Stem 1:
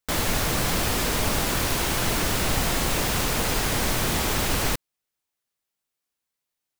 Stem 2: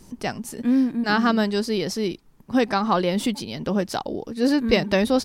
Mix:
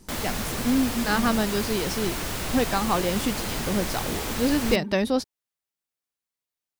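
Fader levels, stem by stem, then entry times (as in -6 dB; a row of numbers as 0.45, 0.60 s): -6.0, -3.5 dB; 0.00, 0.00 s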